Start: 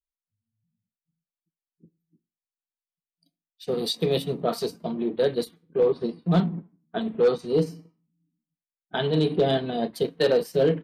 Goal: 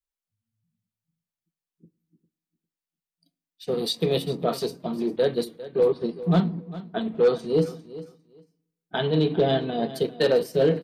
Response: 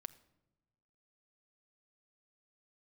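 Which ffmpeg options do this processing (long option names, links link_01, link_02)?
-filter_complex "[0:a]asettb=1/sr,asplit=3[link_01][link_02][link_03];[link_01]atrim=end=9.004[link_04];[link_02]atrim=start=9:end=9.83,asetpts=PTS-STARTPTS,afade=type=in:duration=0.004:curve=qsin,afade=type=out:start_time=0.826:duration=0.004:curve=qsin,lowpass=4900[link_05];[link_03]atrim=start=9.826[link_06];[link_04][link_05]acrossfade=duration=0.004:curve1=hsin:curve2=qsin[link_07];[link_07][link_06]acrossfade=duration=0.004:curve1=qsin:curve2=hsin,aecho=1:1:402|804:0.158|0.0269,asplit=2[link_08][link_09];[1:a]atrim=start_sample=2205[link_10];[link_09][link_10]afir=irnorm=-1:irlink=0,volume=-3dB[link_11];[link_08][link_11]amix=inputs=2:normalize=0,volume=-2.5dB"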